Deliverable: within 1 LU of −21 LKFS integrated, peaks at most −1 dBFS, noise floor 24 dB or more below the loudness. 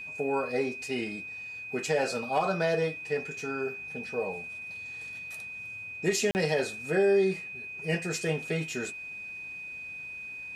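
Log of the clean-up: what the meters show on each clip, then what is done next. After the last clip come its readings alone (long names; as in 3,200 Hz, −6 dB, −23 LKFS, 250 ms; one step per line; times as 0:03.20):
number of dropouts 1; longest dropout 39 ms; interfering tone 2,500 Hz; level of the tone −38 dBFS; integrated loudness −31.0 LKFS; sample peak −14.5 dBFS; target loudness −21.0 LKFS
→ repair the gap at 0:06.31, 39 ms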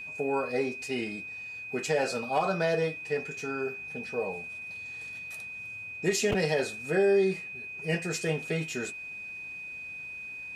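number of dropouts 0; interfering tone 2,500 Hz; level of the tone −38 dBFS
→ notch filter 2,500 Hz, Q 30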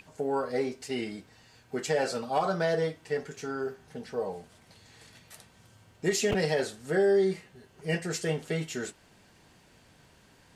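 interfering tone none found; integrated loudness −30.5 LKFS; sample peak −15.0 dBFS; target loudness −21.0 LKFS
→ level +9.5 dB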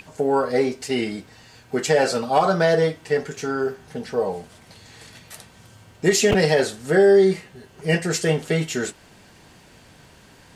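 integrated loudness −21.0 LKFS; sample peak −5.5 dBFS; background noise floor −51 dBFS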